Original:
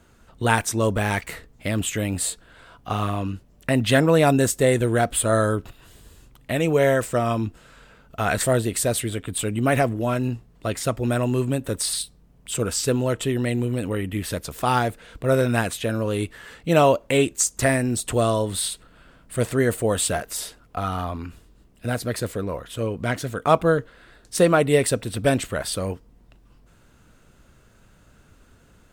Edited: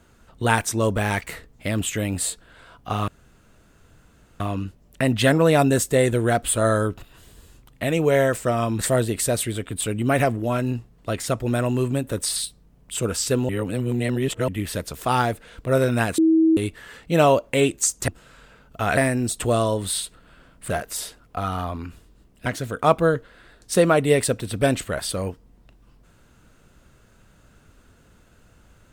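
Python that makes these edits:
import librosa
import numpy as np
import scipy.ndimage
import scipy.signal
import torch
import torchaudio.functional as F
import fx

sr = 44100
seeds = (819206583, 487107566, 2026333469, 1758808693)

y = fx.edit(x, sr, fx.insert_room_tone(at_s=3.08, length_s=1.32),
    fx.move(start_s=7.47, length_s=0.89, to_s=17.65),
    fx.reverse_span(start_s=13.06, length_s=0.99),
    fx.bleep(start_s=15.75, length_s=0.39, hz=322.0, db=-13.0),
    fx.cut(start_s=19.38, length_s=0.72),
    fx.cut(start_s=21.86, length_s=1.23), tone=tone)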